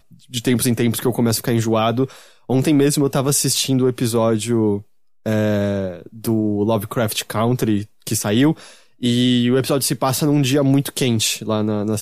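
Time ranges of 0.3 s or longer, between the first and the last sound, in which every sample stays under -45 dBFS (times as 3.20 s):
4.83–5.26 s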